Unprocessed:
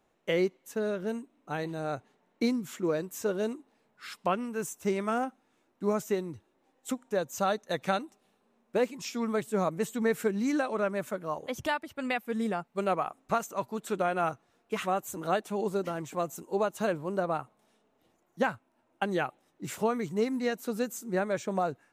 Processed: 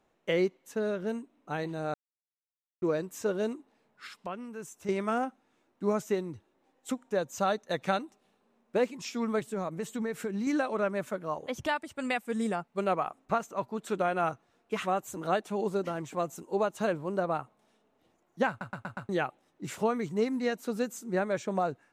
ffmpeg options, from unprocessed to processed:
-filter_complex "[0:a]asettb=1/sr,asplit=3[a][b][c];[a]atrim=end=4.074[d];[b]atrim=start=4.07:end=4.89,asetpts=PTS-STARTPTS,afade=t=in:d=0.004:c=qsin,afade=t=out:st=0.816:d=0.004:c=qsin,acompressor=threshold=-50dB:ratio=1.5:attack=3.2:release=140:knee=1:detection=peak[e];[c]atrim=start=4.886[f];[d][e]acrossfade=d=0.004:c1=hsin:c2=qsin[g];[g][f]acrossfade=d=0.004:c1=qsin:c2=hsin,asettb=1/sr,asplit=3[h][i][j];[h]atrim=end=9.394[k];[i]atrim=start=9.39:end=10.47,asetpts=PTS-STARTPTS,afade=t=in:d=0.004:c=qsin,afade=t=out:st=1.076:d=0.004:c=qsin,acompressor=threshold=-29dB:ratio=6:attack=3.2:release=140:knee=1:detection=peak[l];[j]atrim=start=10.466[m];[k][l]acrossfade=d=0.004:c1=hsin:c2=qsin[n];[n][m]acrossfade=d=0.004:c1=qsin:c2=hsin,asettb=1/sr,asplit=3[o][p][q];[o]atrim=end=11.764[r];[p]atrim=start=11.76:end=12.56,asetpts=PTS-STARTPTS,afade=t=in:d=0.004:c=qsin,afade=t=out:st=0.796:d=0.004:c=qsin,equalizer=f=8.2k:w=1.5:g=11[s];[q]atrim=start=12.556[t];[r][s]acrossfade=d=0.004:c1=hsin:c2=qsin[u];[u][t]acrossfade=d=0.004:c1=qsin:c2=hsin,asettb=1/sr,asplit=3[v][w][x];[v]atrim=end=13.254[y];[w]atrim=start=13.25:end=13.79,asetpts=PTS-STARTPTS,afade=t=in:d=0.004:c=qsin,afade=t=out:st=0.536:d=0.004:c=qsin,highshelf=f=3.7k:g=-6.5[z];[x]atrim=start=13.786[aa];[y][z]acrossfade=d=0.004:c1=hsin:c2=qsin[ab];[ab][aa]acrossfade=d=0.004:c1=qsin:c2=hsin,asplit=8[ac][ad][ae][af][ag][ah][ai][aj];[ac]atrim=end=1.94,asetpts=PTS-STARTPTS,afade=t=out:st=1.936:d=0.004:c=hsin[ak];[ad]atrim=start=1.94:end=2.82,asetpts=PTS-STARTPTS,volume=0[al];[ae]atrim=start=2.82:end=18.612,asetpts=PTS-STARTPTS,afade=t=in:d=0.004:c=hsin[am];[af]atrim=start=18.488:end=18.612[an];[ag]atrim=start=18.488:end=18.612[ao];[ah]atrim=start=18.488:end=18.612[ap];[ai]atrim=start=18.488:end=18.612[aq];[aj]atrim=start=19.088[ar];[ak][al][am]concat=n=3:v=0:a=1[as];[as][an]acrossfade=d=0.004:c1=hsin:c2=hsin[at];[at][ao]acrossfade=d=0.004:c1=hsin:c2=hsin[au];[au][ap]acrossfade=d=0.004:c1=hsin:c2=hsin[av];[av][aq]acrossfade=d=0.004:c1=hsin:c2=hsin[aw];[aw][ar]acrossfade=d=0.004:c1=hsin:c2=hsin,highshelf=f=12k:g=-12"

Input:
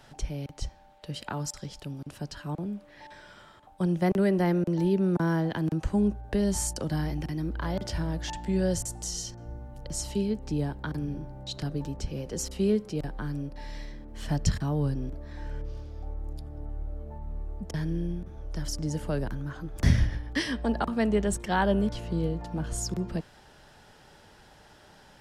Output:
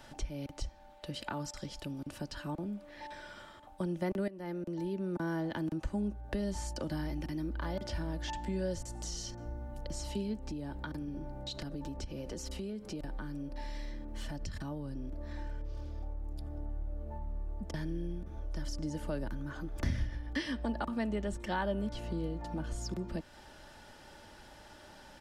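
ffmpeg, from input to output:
-filter_complex "[0:a]asettb=1/sr,asplit=3[a][b][c];[a]atrim=end=10.474[d];[b]atrim=start=10.47:end=16.49,asetpts=PTS-STARTPTS,afade=t=in:d=0.004:c=qsin,afade=t=out:st=6.016:d=0.004:c=qsin,acompressor=threshold=-34dB:ratio=4:attack=3.2:release=140:knee=1:detection=peak[e];[c]atrim=start=16.486[f];[d][e]acrossfade=d=0.004:c1=hsin:c2=qsin[g];[g][f]acrossfade=d=0.004:c1=qsin:c2=hsin,asplit=2[h][i];[h]atrim=end=4.28,asetpts=PTS-STARTPTS,afade=t=out:st=4.276:d=0.004:c=hsin:silence=0.133352[j];[i]atrim=start=4.28,asetpts=PTS-STARTPTS,afade=t=in:d=1.19:silence=0.133352[k];[j][k]concat=n=2:v=0:a=1,acrossover=split=5200[l][m];[m]acompressor=threshold=-48dB:ratio=4:attack=1:release=60[n];[l][n]amix=inputs=2:normalize=0,aecho=1:1:3.4:0.4,acompressor=threshold=-38dB:ratio=2"

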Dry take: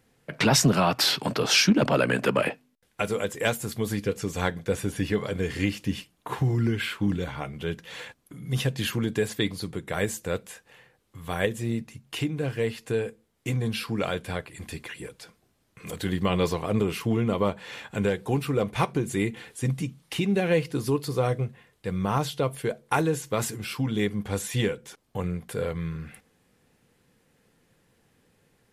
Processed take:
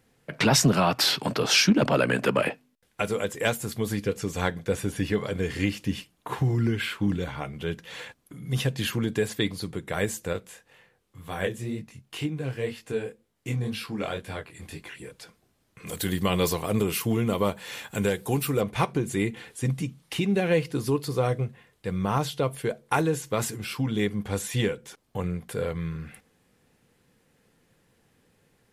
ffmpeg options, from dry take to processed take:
-filter_complex "[0:a]asettb=1/sr,asplit=3[a][b][c];[a]atrim=end=10.334[d];[b]atrim=start=10.33:end=15.12,asetpts=PTS-STARTPTS,afade=t=in:d=0.004:c=qsin,afade=t=out:st=4.786:d=0.004:c=qsin,flanger=delay=19:depth=6:speed=2[e];[c]atrim=start=15.116[f];[d][e]acrossfade=d=0.004:c1=hsin:c2=qsin[g];[g][f]acrossfade=d=0.004:c1=qsin:c2=hsin,asettb=1/sr,asplit=3[h][i][j];[h]atrim=end=15.914[k];[i]atrim=start=15.91:end=18.61,asetpts=PTS-STARTPTS,afade=t=in:d=0.004:c=qsin,afade=t=out:st=2.696:d=0.004:c=qsin,aemphasis=mode=production:type=50fm[l];[j]atrim=start=18.606[m];[k][l]acrossfade=d=0.004:c1=hsin:c2=qsin[n];[n][m]acrossfade=d=0.004:c1=qsin:c2=hsin"

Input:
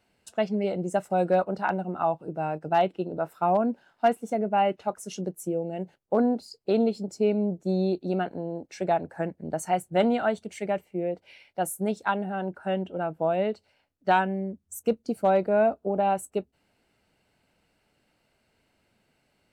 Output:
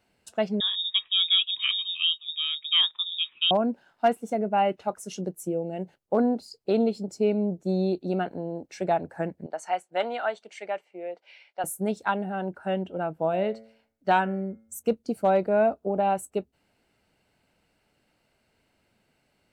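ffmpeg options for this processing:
-filter_complex "[0:a]asettb=1/sr,asplit=3[a][b][c];[a]atrim=end=0.604[d];[b]atrim=start=0.6:end=3.51,asetpts=PTS-STARTPTS,afade=t=in:d=0.004:c=qsin,afade=t=out:st=2.906:d=0.004:c=qsin,lowpass=f=3.3k:t=q:w=0.5098,lowpass=f=3.3k:t=q:w=0.6013,lowpass=f=3.3k:t=q:w=0.9,lowpass=f=3.3k:t=q:w=2.563,afreqshift=-3900[e];[c]atrim=start=3.506[f];[d][e]acrossfade=d=0.004:c1=hsin:c2=qsin[g];[g][f]acrossfade=d=0.004:c1=qsin:c2=hsin,asettb=1/sr,asplit=3[h][i][j];[h]atrim=end=9.464[k];[i]atrim=start=9.46:end=11.64,asetpts=PTS-STARTPTS,afade=t=in:d=0.004:c=qsin,afade=t=out:st=2.176:d=0.004:c=qsin,highpass=630,lowpass=5.6k[l];[j]atrim=start=11.636[m];[k][l]acrossfade=d=0.004:c1=hsin:c2=qsin[n];[n][m]acrossfade=d=0.004:c1=qsin:c2=hsin,asettb=1/sr,asplit=3[o][p][q];[o]atrim=end=13.204[r];[p]atrim=start=13.2:end=14.88,asetpts=PTS-STARTPTS,afade=t=in:d=0.004:c=qsin,afade=t=out:st=1.676:d=0.004:c=qsin,bandreject=f=111.7:t=h:w=4,bandreject=f=223.4:t=h:w=4,bandreject=f=335.1:t=h:w=4,bandreject=f=446.8:t=h:w=4,bandreject=f=558.5:t=h:w=4,bandreject=f=670.2:t=h:w=4,bandreject=f=781.9:t=h:w=4,bandreject=f=893.6:t=h:w=4,bandreject=f=1.0053k:t=h:w=4,bandreject=f=1.117k:t=h:w=4,bandreject=f=1.2287k:t=h:w=4,bandreject=f=1.3404k:t=h:w=4,bandreject=f=1.4521k:t=h:w=4,bandreject=f=1.5638k:t=h:w=4,bandreject=f=1.6755k:t=h:w=4,bandreject=f=1.7872k:t=h:w=4,bandreject=f=1.8989k:t=h:w=4,bandreject=f=2.0106k:t=h:w=4,bandreject=f=2.1223k:t=h:w=4,bandreject=f=2.234k:t=h:w=4,bandreject=f=2.3457k:t=h:w=4[s];[q]atrim=start=14.876[t];[r][s]acrossfade=d=0.004:c1=hsin:c2=qsin[u];[u][t]acrossfade=d=0.004:c1=qsin:c2=hsin"

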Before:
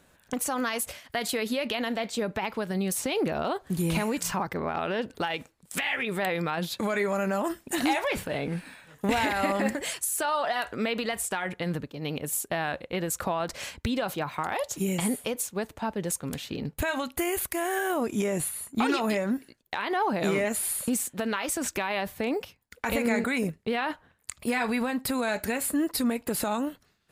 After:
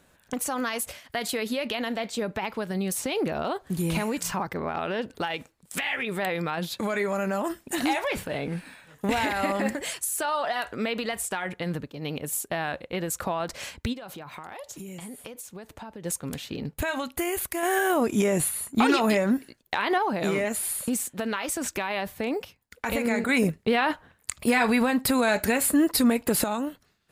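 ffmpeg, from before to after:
-filter_complex "[0:a]asplit=3[a][b][c];[a]afade=t=out:st=13.92:d=0.02[d];[b]acompressor=threshold=-37dB:ratio=6:attack=3.2:release=140:knee=1:detection=peak,afade=t=in:st=13.92:d=0.02,afade=t=out:st=16.04:d=0.02[e];[c]afade=t=in:st=16.04:d=0.02[f];[d][e][f]amix=inputs=3:normalize=0,asplit=5[g][h][i][j][k];[g]atrim=end=17.632[l];[h]atrim=start=17.628:end=19.982,asetpts=PTS-STARTPTS,volume=4.5dB[m];[i]atrim=start=19.978:end=23.292[n];[j]atrim=start=23.288:end=26.442,asetpts=PTS-STARTPTS,volume=5.5dB[o];[k]atrim=start=26.438[p];[l][m]acrossfade=d=0.004:c1=hsin:c2=hsin[q];[q][n]acrossfade=d=0.004:c1=hsin:c2=hsin[r];[r][o]acrossfade=d=0.004:c1=hsin:c2=hsin[s];[s][p]acrossfade=d=0.004:c1=hsin:c2=hsin"

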